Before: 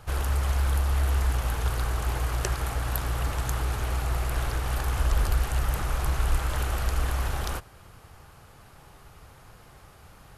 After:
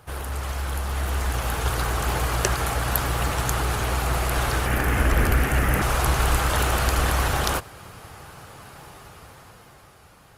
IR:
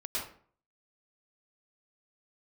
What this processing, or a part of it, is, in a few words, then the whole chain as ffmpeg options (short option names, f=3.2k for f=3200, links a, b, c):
video call: -filter_complex "[0:a]asettb=1/sr,asplit=3[a][b][c];[a]atrim=end=4.664[d];[b]atrim=start=4.66:end=5.82,asetpts=PTS-STARTPTS,afade=t=in:d=0.004:c=qsin,afade=t=out:st=1.156:d=0.004:c=qsin,equalizer=f=250:t=o:w=1:g=7,equalizer=f=1k:t=o:w=1:g=-5,equalizer=f=2k:t=o:w=1:g=7,equalizer=f=4k:t=o:w=1:g=-9,equalizer=f=8k:t=o:w=1:g=-5[e];[c]atrim=start=5.816[f];[d][e]acrossfade=d=0.004:c1=hsin:c2=qsin[g];[g][f]acrossfade=d=0.004:c1=qsin:c2=hsin,highpass=f=120:p=1,dynaudnorm=f=210:g=13:m=9.5dB,volume=1dB" -ar 48000 -c:a libopus -b:a 32k